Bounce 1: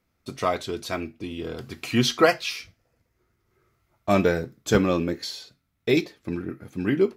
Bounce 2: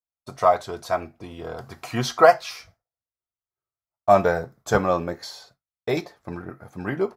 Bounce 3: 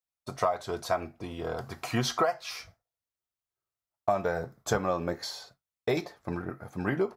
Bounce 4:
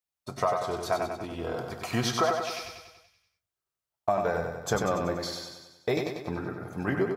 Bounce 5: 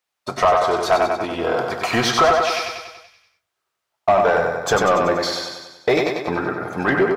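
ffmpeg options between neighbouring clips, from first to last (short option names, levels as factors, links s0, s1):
-af "agate=range=0.0224:threshold=0.00447:ratio=3:detection=peak,firequalizer=gain_entry='entry(140,0);entry(280,-7);entry(700,12);entry(2600,-7);entry(5200,-1)':delay=0.05:min_phase=1,volume=0.841"
-af "acompressor=threshold=0.0708:ratio=12"
-af "aecho=1:1:95|190|285|380|475|570|665|760:0.562|0.321|0.183|0.104|0.0594|0.0338|0.0193|0.011"
-filter_complex "[0:a]asplit=2[s0][s1];[s1]highpass=f=720:p=1,volume=7.94,asoftclip=type=tanh:threshold=0.299[s2];[s0][s2]amix=inputs=2:normalize=0,lowpass=f=2500:p=1,volume=0.501,volume=1.88"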